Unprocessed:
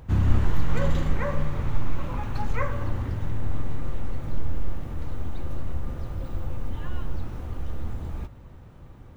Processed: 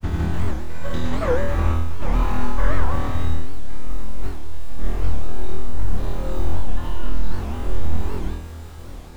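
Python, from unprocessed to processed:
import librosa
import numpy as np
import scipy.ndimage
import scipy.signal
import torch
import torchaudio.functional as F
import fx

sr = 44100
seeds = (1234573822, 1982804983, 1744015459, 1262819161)

y = fx.peak_eq(x, sr, hz=120.0, db=-6.5, octaves=0.87)
y = fx.over_compress(y, sr, threshold_db=-25.0, ratio=-1.0)
y = fx.dmg_noise_colour(y, sr, seeds[0], colour='pink', level_db=-54.0)
y = fx.granulator(y, sr, seeds[1], grain_ms=100.0, per_s=20.0, spray_ms=100.0, spread_st=0)
y = fx.room_flutter(y, sr, wall_m=4.2, rt60_s=0.7)
y = fx.rev_gated(y, sr, seeds[2], gate_ms=120, shape='flat', drr_db=3.5)
y = fx.record_warp(y, sr, rpm=78.0, depth_cents=250.0)
y = F.gain(torch.from_numpy(y), 1.5).numpy()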